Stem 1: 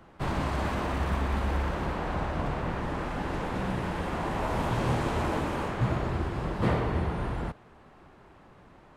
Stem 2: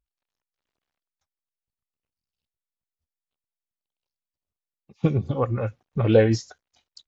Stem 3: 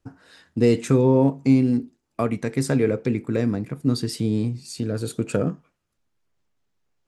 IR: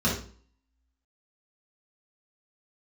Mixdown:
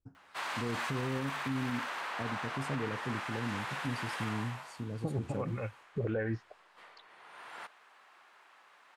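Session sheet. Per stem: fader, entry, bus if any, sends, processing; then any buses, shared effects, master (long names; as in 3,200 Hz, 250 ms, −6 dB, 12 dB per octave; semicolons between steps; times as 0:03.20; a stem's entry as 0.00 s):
+2.5 dB, 0.15 s, no send, high-pass filter 1,300 Hz 12 dB per octave; automatic ducking −21 dB, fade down 0.60 s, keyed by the second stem
−11.5 dB, 0.00 s, no send, low-pass on a step sequencer 2.8 Hz 430–4,400 Hz
−19.5 dB, 0.00 s, no send, low-shelf EQ 270 Hz +9.5 dB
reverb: not used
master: brickwall limiter −25.5 dBFS, peak gain reduction 9 dB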